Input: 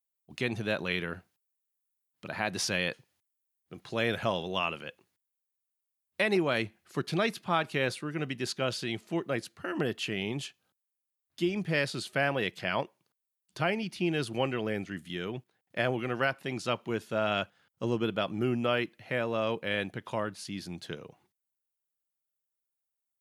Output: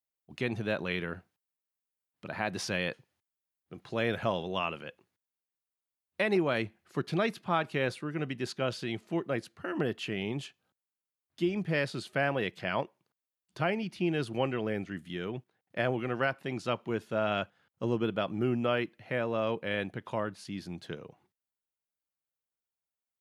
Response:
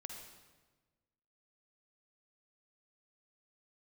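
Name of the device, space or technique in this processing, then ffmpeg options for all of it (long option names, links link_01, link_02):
behind a face mask: -af "highshelf=frequency=3100:gain=-8"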